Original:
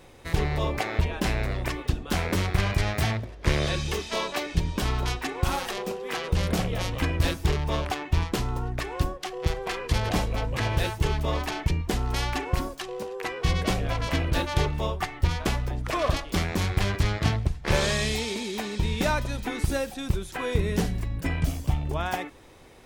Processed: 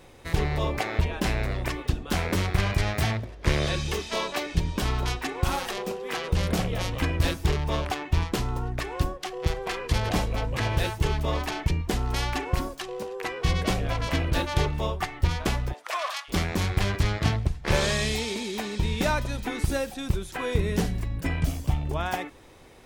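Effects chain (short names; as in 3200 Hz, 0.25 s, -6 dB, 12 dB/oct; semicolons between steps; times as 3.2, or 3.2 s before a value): 15.72–16.28 HPF 460 Hz -> 1100 Hz 24 dB/oct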